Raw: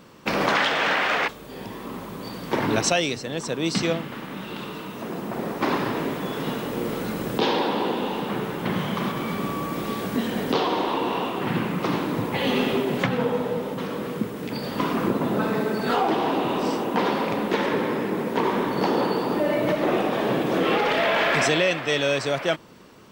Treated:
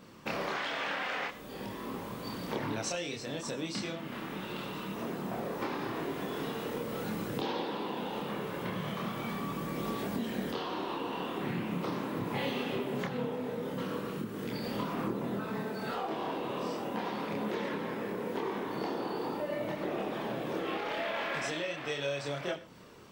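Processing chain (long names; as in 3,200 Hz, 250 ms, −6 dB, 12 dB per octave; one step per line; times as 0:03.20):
downward compressor, threshold −28 dBFS, peak gain reduction 11 dB
multi-voice chorus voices 2, 0.2 Hz, delay 27 ms, depth 2 ms
on a send: convolution reverb, pre-delay 3 ms, DRR 13.5 dB
on the sum: level −1.5 dB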